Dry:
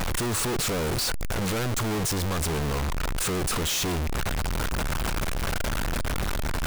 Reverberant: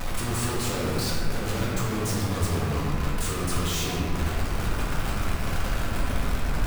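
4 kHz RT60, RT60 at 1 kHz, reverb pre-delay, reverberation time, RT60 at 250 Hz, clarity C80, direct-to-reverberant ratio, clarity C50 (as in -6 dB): 1.3 s, 2.1 s, 4 ms, 2.2 s, 2.9 s, 0.5 dB, -6.5 dB, -1.5 dB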